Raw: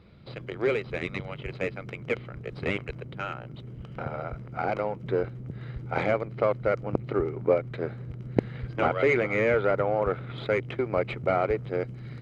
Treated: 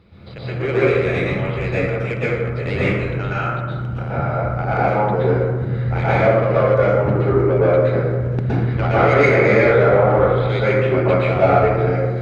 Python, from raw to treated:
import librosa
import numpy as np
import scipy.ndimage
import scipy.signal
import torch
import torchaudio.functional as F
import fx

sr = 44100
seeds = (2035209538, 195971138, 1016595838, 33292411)

y = 10.0 ** (-17.0 / 20.0) * np.tanh(x / 10.0 ** (-17.0 / 20.0))
y = fx.rev_plate(y, sr, seeds[0], rt60_s=1.5, hf_ratio=0.4, predelay_ms=105, drr_db=-10.0)
y = y * librosa.db_to_amplitude(2.0)